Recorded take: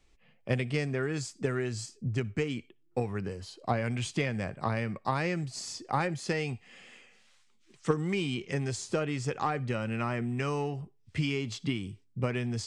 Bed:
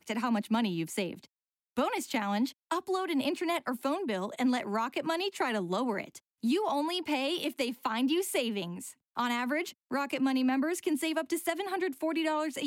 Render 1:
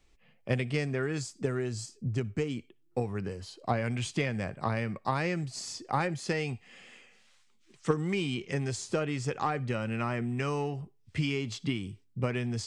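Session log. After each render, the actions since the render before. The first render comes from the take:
0:01.22–0:03.18: dynamic equaliser 2,100 Hz, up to −5 dB, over −53 dBFS, Q 0.91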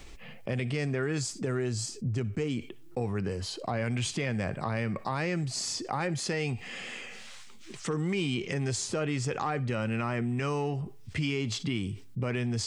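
brickwall limiter −22 dBFS, peak gain reduction 9.5 dB
envelope flattener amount 50%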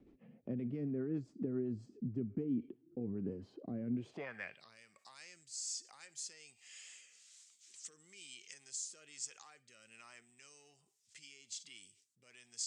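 band-pass filter sweep 260 Hz → 7,300 Hz, 0:03.94–0:04.76
rotating-speaker cabinet horn 7.5 Hz, later 1.2 Hz, at 0:01.82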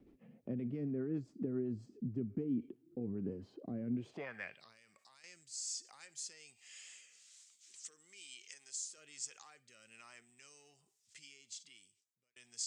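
0:04.71–0:05.24: downward compressor 4 to 1, threshold −60 dBFS
0:07.81–0:08.98: high-pass filter 420 Hz 6 dB per octave
0:11.20–0:12.36: fade out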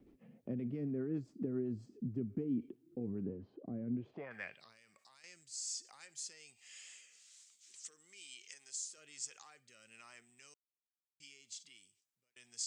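0:03.25–0:04.31: head-to-tape spacing loss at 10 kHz 31 dB
0:10.54–0:11.20: silence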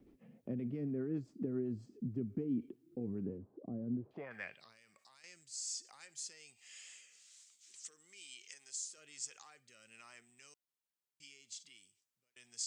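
0:03.38–0:04.11: low-pass filter 1,200 Hz 24 dB per octave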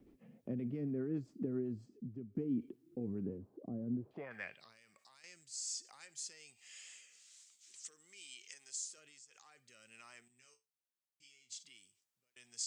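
0:01.53–0:02.35: fade out, to −12 dB
0:08.98–0:09.66: downward compressor 5 to 1, threshold −57 dBFS
0:10.28–0:11.50: tuned comb filter 63 Hz, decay 0.22 s, mix 100%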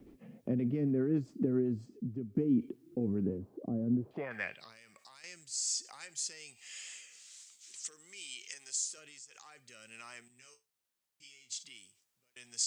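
level +7.5 dB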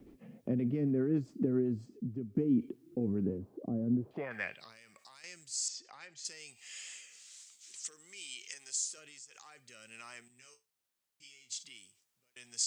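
0:05.68–0:06.25: high-frequency loss of the air 160 metres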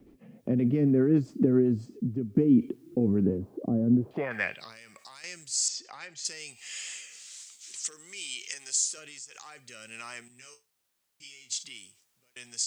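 automatic gain control gain up to 8 dB

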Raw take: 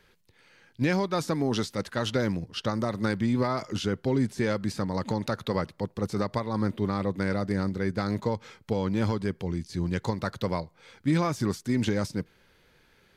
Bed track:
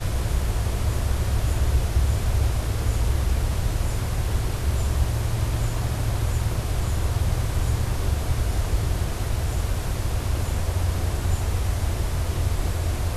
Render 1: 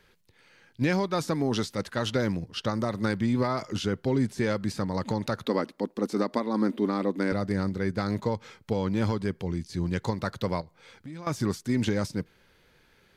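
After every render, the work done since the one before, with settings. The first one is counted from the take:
0:05.46–0:07.32: low shelf with overshoot 170 Hz −13.5 dB, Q 3
0:10.61–0:11.27: downward compressor 4 to 1, threshold −41 dBFS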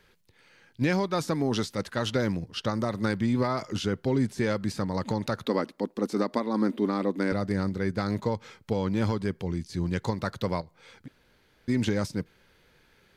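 0:11.08–0:11.68: fill with room tone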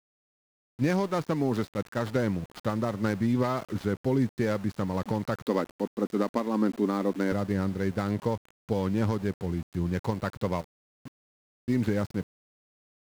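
running median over 15 samples
centre clipping without the shift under −42.5 dBFS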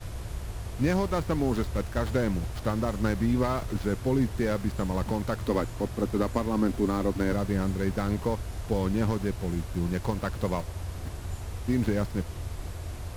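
mix in bed track −12 dB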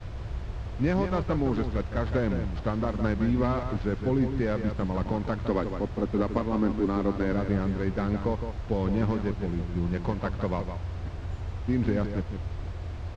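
high-frequency loss of the air 170 metres
single-tap delay 162 ms −8 dB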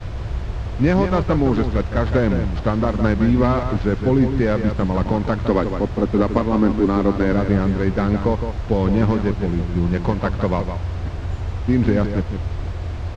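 level +9 dB

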